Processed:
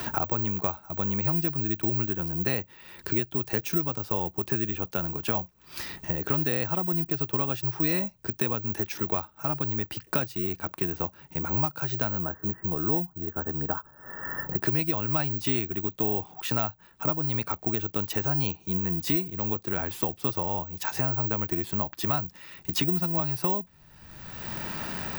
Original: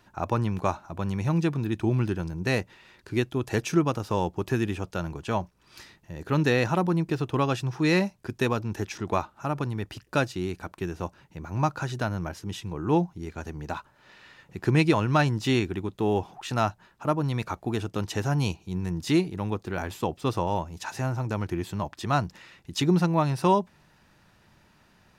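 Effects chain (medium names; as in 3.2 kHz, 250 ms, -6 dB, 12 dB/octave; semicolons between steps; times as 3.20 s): 12.22–14.62 s: Chebyshev low-pass 1.8 kHz, order 6; careless resampling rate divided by 2×, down none, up zero stuff; three bands compressed up and down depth 100%; trim -5.5 dB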